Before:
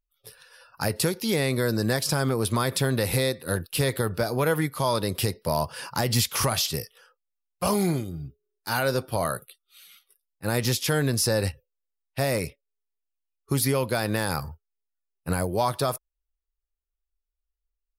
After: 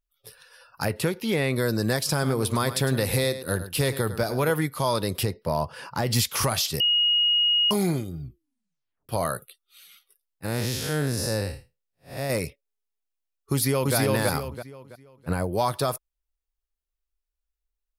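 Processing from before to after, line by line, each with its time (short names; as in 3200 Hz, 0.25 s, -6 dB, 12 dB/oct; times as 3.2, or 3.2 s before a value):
0.85–1.56 resonant high shelf 3700 Hz -6.5 dB, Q 1.5
2.11–4.51 echo 0.105 s -12.5 dB
5.23–6.07 high shelf 4100 Hz -11 dB
6.8–7.71 bleep 2880 Hz -18 dBFS
8.21 tape stop 0.88 s
10.45–12.3 time blur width 0.169 s
13.52–13.96 echo throw 0.33 s, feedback 35%, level -1 dB
14.48–15.53 high shelf 4100 Hz -10 dB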